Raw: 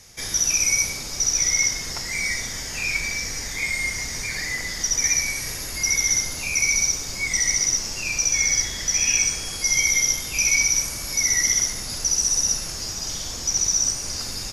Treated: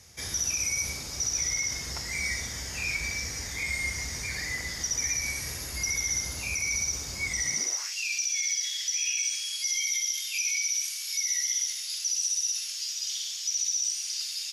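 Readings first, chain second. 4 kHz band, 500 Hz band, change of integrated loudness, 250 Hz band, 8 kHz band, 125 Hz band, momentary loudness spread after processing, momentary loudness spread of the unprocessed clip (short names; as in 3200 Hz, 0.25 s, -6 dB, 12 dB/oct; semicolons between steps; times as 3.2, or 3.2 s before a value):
-5.5 dB, -8.5 dB, -7.5 dB, -8.0 dB, -7.5 dB, -5.0 dB, 6 LU, 9 LU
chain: high-pass sweep 64 Hz -> 3100 Hz, 7.42–7.96; limiter -14.5 dBFS, peak gain reduction 8 dB; gain -5.5 dB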